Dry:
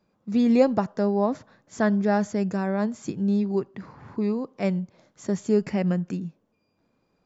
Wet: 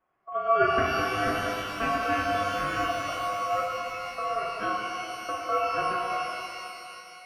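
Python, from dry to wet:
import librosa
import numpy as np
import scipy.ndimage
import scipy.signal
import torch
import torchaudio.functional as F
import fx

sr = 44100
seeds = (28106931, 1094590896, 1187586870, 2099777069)

y = scipy.signal.sosfilt(scipy.signal.butter(16, 2300.0, 'lowpass', fs=sr, output='sos'), x)
y = y * np.sin(2.0 * np.pi * 910.0 * np.arange(len(y)) / sr)
y = fx.rev_shimmer(y, sr, seeds[0], rt60_s=2.8, semitones=12, shimmer_db=-8, drr_db=-2.5)
y = F.gain(torch.from_numpy(y), -5.0).numpy()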